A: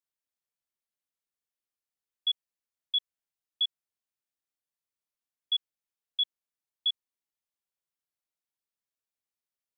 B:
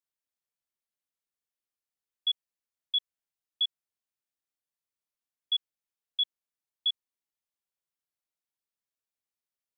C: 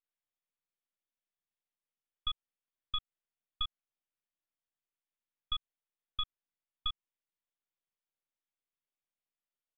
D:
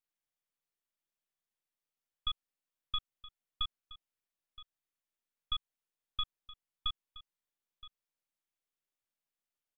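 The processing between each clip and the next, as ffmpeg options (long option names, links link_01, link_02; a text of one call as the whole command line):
ffmpeg -i in.wav -af anull out.wav
ffmpeg -i in.wav -af "aresample=8000,aeval=exprs='max(val(0),0)':channel_layout=same,aresample=44100,acompressor=threshold=-31dB:ratio=6,volume=1dB" out.wav
ffmpeg -i in.wav -af "aecho=1:1:971:0.141" out.wav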